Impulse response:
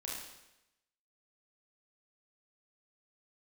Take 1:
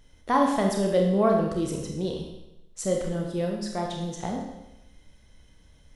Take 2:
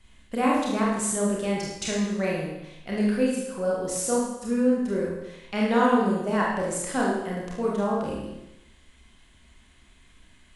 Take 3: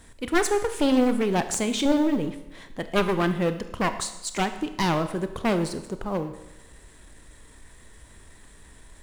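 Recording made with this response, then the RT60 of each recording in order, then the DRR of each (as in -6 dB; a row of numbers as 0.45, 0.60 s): 2; 0.90, 0.90, 0.90 s; 0.0, -4.5, 9.5 dB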